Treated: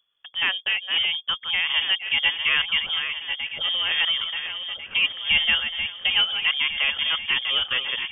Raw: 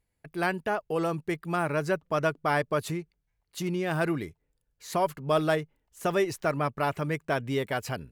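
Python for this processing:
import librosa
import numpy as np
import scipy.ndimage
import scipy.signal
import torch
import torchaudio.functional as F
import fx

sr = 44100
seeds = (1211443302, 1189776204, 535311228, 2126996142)

y = fx.reverse_delay_fb(x, sr, ms=698, feedback_pct=64, wet_db=-8.0)
y = fx.vibrato(y, sr, rate_hz=0.79, depth_cents=6.5)
y = fx.freq_invert(y, sr, carrier_hz=3400)
y = y * librosa.db_to_amplitude(4.0)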